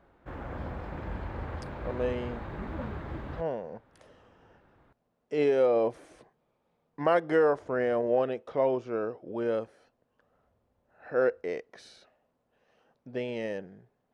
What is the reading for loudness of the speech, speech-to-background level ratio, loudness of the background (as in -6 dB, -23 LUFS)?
-29.5 LUFS, 10.0 dB, -39.5 LUFS